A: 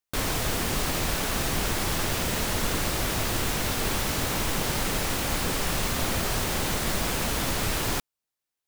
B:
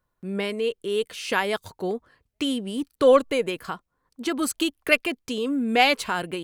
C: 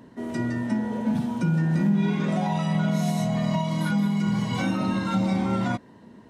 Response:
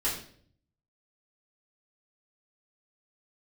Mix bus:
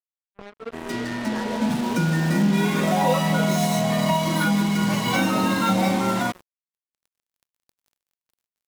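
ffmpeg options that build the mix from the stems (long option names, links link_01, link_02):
-filter_complex "[0:a]adelay=1700,volume=-17dB[link_01];[1:a]lowpass=1300,flanger=delay=19.5:depth=3.4:speed=1.9,volume=-6.5dB,asplit=2[link_02][link_03];[2:a]highpass=frequency=380:poles=1,dynaudnorm=framelen=200:gausssize=9:maxgain=6.5dB,adelay=550,volume=2dB[link_04];[link_03]apad=whole_len=457514[link_05];[link_01][link_05]sidechaincompress=threshold=-40dB:ratio=4:attack=10:release=960[link_06];[link_06][link_02][link_04]amix=inputs=3:normalize=0,highpass=frequency=42:width=0.5412,highpass=frequency=42:width=1.3066,acrusher=bits=4:mix=0:aa=0.5"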